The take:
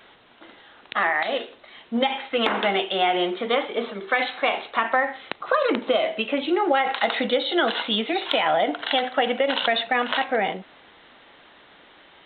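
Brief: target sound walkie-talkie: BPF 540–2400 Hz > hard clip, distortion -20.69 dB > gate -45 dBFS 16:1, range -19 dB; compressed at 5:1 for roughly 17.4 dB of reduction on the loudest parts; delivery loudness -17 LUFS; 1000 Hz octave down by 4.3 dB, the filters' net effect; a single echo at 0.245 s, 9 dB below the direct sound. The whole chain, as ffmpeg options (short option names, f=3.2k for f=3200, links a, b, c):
-af "equalizer=f=1k:t=o:g=-5,acompressor=threshold=-39dB:ratio=5,highpass=540,lowpass=2.4k,aecho=1:1:245:0.355,asoftclip=type=hard:threshold=-33.5dB,agate=range=-19dB:threshold=-45dB:ratio=16,volume=26.5dB"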